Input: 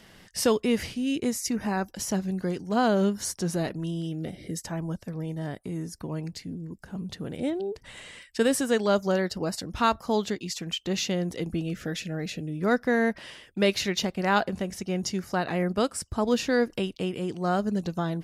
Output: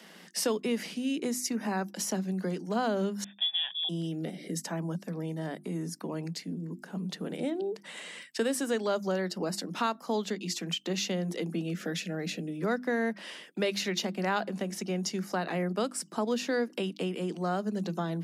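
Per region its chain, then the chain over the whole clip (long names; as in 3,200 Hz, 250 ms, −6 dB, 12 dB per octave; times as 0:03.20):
0:03.24–0:03.89: voice inversion scrambler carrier 3,600 Hz + comb filter 1.2 ms, depth 63% + expander for the loud parts, over −38 dBFS
whole clip: Butterworth high-pass 160 Hz 96 dB per octave; mains-hum notches 50/100/150/200/250/300/350 Hz; downward compressor 2 to 1, threshold −33 dBFS; level +1.5 dB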